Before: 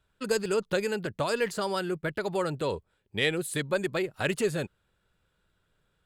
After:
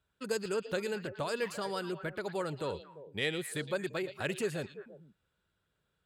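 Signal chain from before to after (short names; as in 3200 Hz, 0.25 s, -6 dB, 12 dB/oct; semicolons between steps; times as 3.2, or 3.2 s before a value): HPF 48 Hz; on a send: delay with a stepping band-pass 0.114 s, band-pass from 3600 Hz, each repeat -1.4 oct, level -6.5 dB; on the sum: gain -6.5 dB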